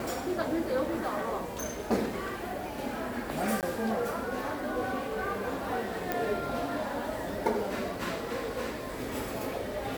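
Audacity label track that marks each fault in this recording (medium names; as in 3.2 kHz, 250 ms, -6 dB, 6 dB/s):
3.610000	3.630000	dropout 18 ms
6.120000	6.120000	pop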